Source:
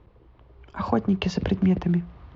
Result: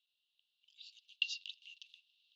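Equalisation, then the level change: rippled Chebyshev high-pass 2700 Hz, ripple 6 dB; LPF 3500 Hz 12 dB/oct; differentiator; +10.0 dB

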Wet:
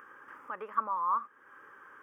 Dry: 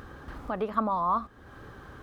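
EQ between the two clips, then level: resonant high-pass 720 Hz, resonance Q 1.5; high shelf 2700 Hz -9.5 dB; fixed phaser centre 1700 Hz, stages 4; 0.0 dB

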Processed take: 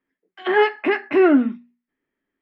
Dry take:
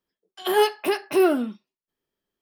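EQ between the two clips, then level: synth low-pass 2000 Hz, resonance Q 3.6; bell 270 Hz +12.5 dB 0.49 oct; notches 60/120/180/240 Hz; 0.0 dB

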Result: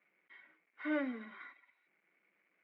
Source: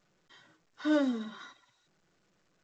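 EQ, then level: HPF 220 Hz 24 dB/oct; ladder low-pass 2300 Hz, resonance 85%; +4.5 dB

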